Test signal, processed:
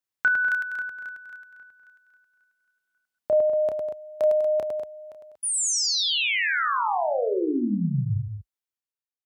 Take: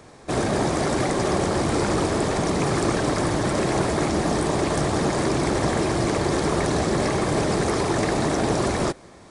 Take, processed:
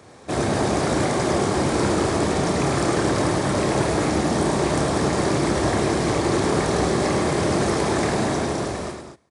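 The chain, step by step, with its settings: fade out at the end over 1.23 s; high-pass 51 Hz 24 dB/octave; on a send: loudspeakers at several distances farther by 10 m -6 dB, 36 m -5 dB, 68 m -11 dB, 81 m -10 dB; on the sum: trim -1 dB

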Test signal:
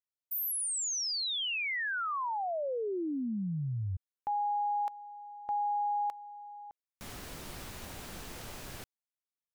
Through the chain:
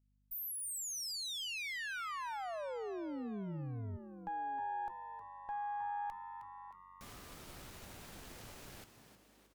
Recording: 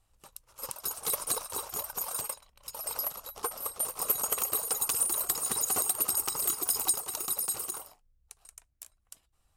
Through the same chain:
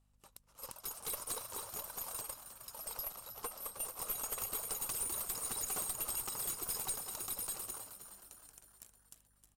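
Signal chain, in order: valve stage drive 26 dB, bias 0.55; frequency-shifting echo 313 ms, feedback 55%, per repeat +91 Hz, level -10.5 dB; hum 50 Hz, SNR 31 dB; trim -5.5 dB

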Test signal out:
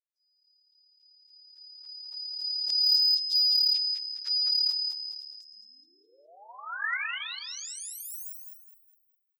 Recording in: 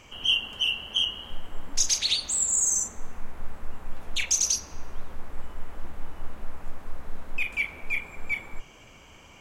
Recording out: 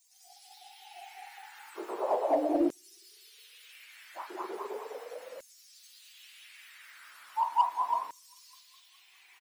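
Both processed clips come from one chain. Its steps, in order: spectrum inverted on a logarithmic axis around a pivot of 1.5 kHz; hum notches 60/120 Hz; frequency-shifting echo 206 ms, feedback 38%, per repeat +36 Hz, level -4 dB; LFO high-pass saw down 0.37 Hz 530–6900 Hz; in parallel at -3.5 dB: overload inside the chain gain 17.5 dB; on the sum: trim -8 dB

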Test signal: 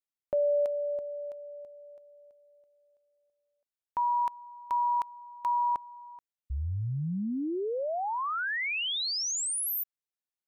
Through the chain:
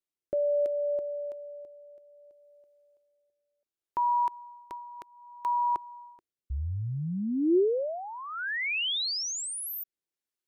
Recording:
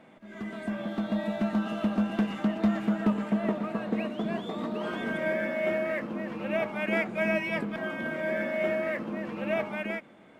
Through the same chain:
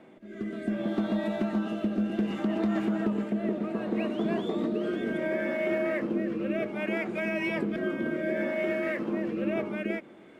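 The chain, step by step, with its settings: rotary cabinet horn 0.65 Hz; peak limiter -24.5 dBFS; peaking EQ 360 Hz +9.5 dB 0.59 oct; trim +2 dB

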